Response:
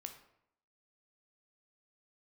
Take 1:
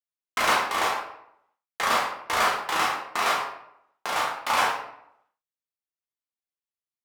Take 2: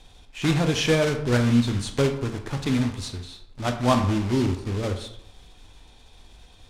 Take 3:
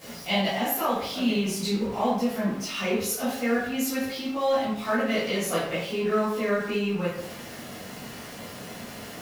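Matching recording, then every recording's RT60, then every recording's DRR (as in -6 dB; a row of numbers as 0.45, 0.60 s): 2; 0.75, 0.75, 0.75 s; -4.5, 5.0, -13.5 dB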